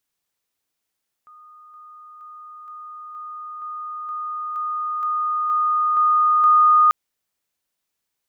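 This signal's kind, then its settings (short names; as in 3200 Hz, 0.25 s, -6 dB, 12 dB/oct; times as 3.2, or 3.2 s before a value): level ladder 1230 Hz -43.5 dBFS, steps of 3 dB, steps 12, 0.47 s 0.00 s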